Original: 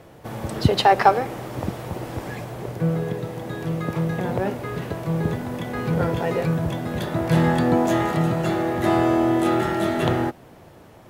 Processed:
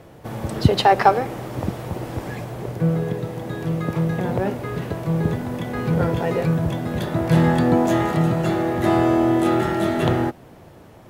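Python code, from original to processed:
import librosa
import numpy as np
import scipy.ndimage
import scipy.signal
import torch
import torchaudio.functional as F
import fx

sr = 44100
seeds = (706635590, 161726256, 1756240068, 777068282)

y = fx.low_shelf(x, sr, hz=410.0, db=3.0)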